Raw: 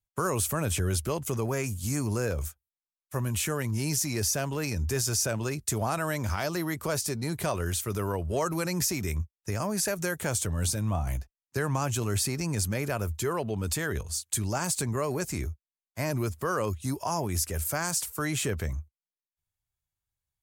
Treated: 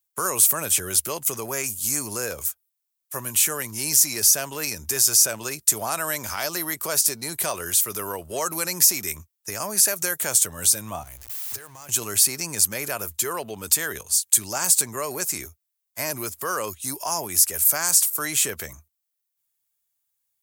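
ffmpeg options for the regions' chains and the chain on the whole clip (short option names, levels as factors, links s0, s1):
-filter_complex "[0:a]asettb=1/sr,asplit=3[s0][s1][s2];[s0]atrim=end=11.034[s3];[s1]atrim=start=11.03:end=11.89,asetpts=PTS-STARTPTS,afade=t=in:d=0.004:c=qsin,afade=t=out:st=0.856:d=0.004:c=qsin,aeval=exprs='val(0)+0.5*0.0158*sgn(val(0))':c=same,acompressor=threshold=0.0112:ratio=10:attack=3.2:release=140:knee=1:detection=peak,lowshelf=f=130:t=q:w=3:g=8[s4];[s2]atrim=start=11.886[s5];[s3][s4]acrossfade=d=0.004:c1=hsin:c2=qsin[s6];[s6][s5]acrossfade=d=0.004:c1=qsin:c2=hsin,highpass=f=610:p=1,aemphasis=mode=production:type=50kf,volume=1.5"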